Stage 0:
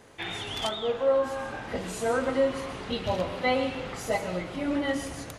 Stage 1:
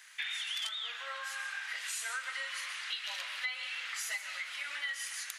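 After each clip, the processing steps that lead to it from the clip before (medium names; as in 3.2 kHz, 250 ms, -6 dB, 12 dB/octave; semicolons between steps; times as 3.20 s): Chebyshev high-pass 1.7 kHz, order 3; compression 6:1, threshold -40 dBFS, peak gain reduction 12.5 dB; trim +5.5 dB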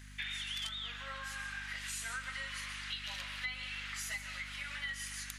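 hum 50 Hz, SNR 10 dB; trim -3 dB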